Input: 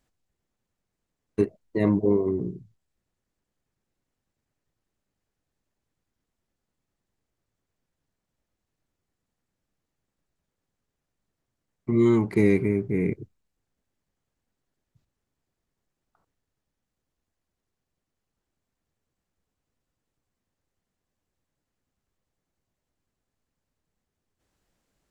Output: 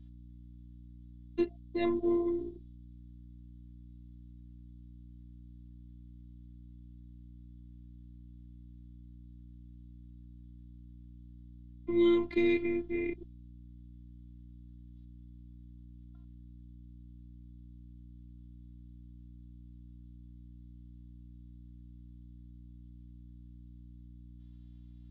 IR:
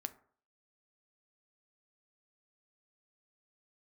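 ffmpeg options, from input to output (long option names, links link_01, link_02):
-af "afftfilt=real='hypot(re,im)*cos(PI*b)':imag='0':win_size=512:overlap=0.75,aeval=exprs='val(0)+0.00562*(sin(2*PI*60*n/s)+sin(2*PI*2*60*n/s)/2+sin(2*PI*3*60*n/s)/3+sin(2*PI*4*60*n/s)/4+sin(2*PI*5*60*n/s)/5)':channel_layout=same,lowpass=frequency=3500:width_type=q:width=6.3,volume=-4.5dB"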